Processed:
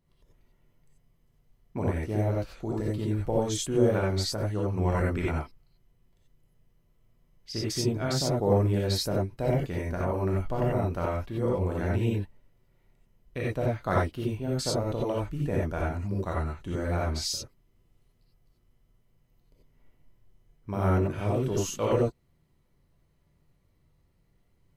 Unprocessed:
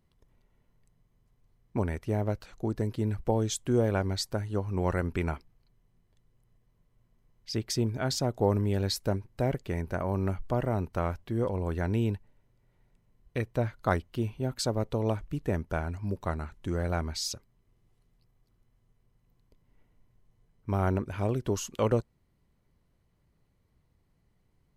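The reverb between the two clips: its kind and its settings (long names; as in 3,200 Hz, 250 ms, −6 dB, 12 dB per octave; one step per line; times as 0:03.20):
reverb whose tail is shaped and stops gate 110 ms rising, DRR −4.5 dB
level −3.5 dB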